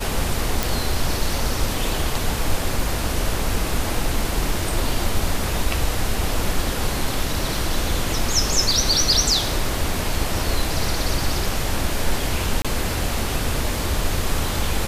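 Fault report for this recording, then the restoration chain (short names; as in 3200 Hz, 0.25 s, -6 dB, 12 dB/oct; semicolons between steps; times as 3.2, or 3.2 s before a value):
0.63 pop
12.62–12.65 gap 26 ms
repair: de-click; interpolate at 12.62, 26 ms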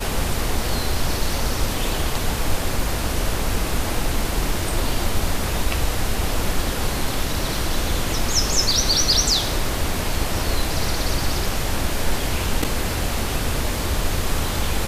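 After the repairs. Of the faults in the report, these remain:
none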